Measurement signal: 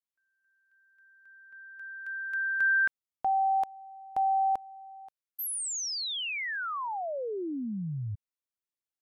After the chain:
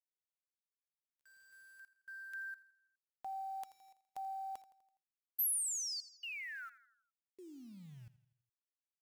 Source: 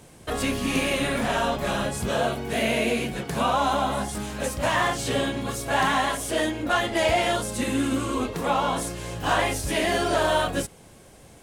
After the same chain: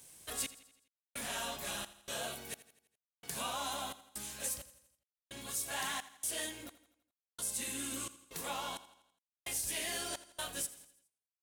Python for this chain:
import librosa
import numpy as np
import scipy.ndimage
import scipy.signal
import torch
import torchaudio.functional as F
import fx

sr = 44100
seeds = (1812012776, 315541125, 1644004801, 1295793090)

p1 = scipy.signal.lfilter([1.0, -0.9], [1.0], x)
p2 = fx.notch(p1, sr, hz=1300.0, q=26.0)
p3 = fx.rider(p2, sr, range_db=5, speed_s=0.5)
p4 = p2 + F.gain(torch.from_numpy(p3), -1.5).numpy()
p5 = fx.step_gate(p4, sr, bpm=65, pattern='xx...xxx.', floor_db=-60.0, edge_ms=4.5)
p6 = fx.quant_dither(p5, sr, seeds[0], bits=10, dither='none')
p7 = fx.echo_feedback(p6, sr, ms=83, feedback_pct=52, wet_db=-16.5)
y = F.gain(torch.from_numpy(p7), -7.5).numpy()